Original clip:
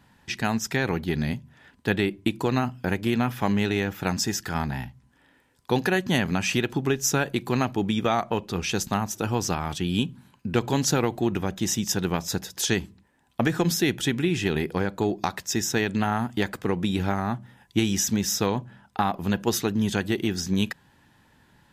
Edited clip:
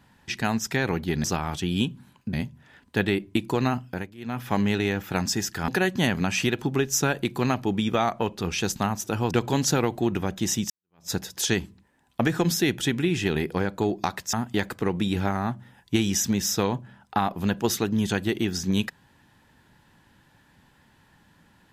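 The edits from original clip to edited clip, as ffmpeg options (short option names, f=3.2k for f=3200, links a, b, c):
-filter_complex "[0:a]asplit=9[a][b][c][d][e][f][g][h][i];[a]atrim=end=1.242[j];[b]atrim=start=9.418:end=10.512[k];[c]atrim=start=1.238:end=3.06,asetpts=PTS-STARTPTS,afade=t=out:st=1.462:d=0.36:silence=0.0749894[l];[d]atrim=start=3.06:end=3.08,asetpts=PTS-STARTPTS,volume=-22.5dB[m];[e]atrim=start=3.08:end=4.592,asetpts=PTS-STARTPTS,afade=t=in:d=0.36:silence=0.0749894[n];[f]atrim=start=5.788:end=9.422[o];[g]atrim=start=10.508:end=11.9,asetpts=PTS-STARTPTS,afade=t=out:st=1.388:d=0.004:c=hsin[p];[h]atrim=start=11.9:end=15.532,asetpts=PTS-STARTPTS,afade=t=in:d=0.4:c=exp[q];[i]atrim=start=16.158[r];[j][k]acrossfade=d=0.004:c1=hsin:c2=hsin[s];[l][m][n]concat=n=3:v=0:a=1[t];[s][t]acrossfade=d=0.004:c1=hsin:c2=hsin[u];[u][o]acrossfade=d=0.004:c1=hsin:c2=hsin[v];[p][q]concat=n=2:v=0:a=1[w];[v][w]acrossfade=d=0.004:c1=hsin:c2=hsin[x];[x][r]acrossfade=d=0.004:c1=hsin:c2=hsin"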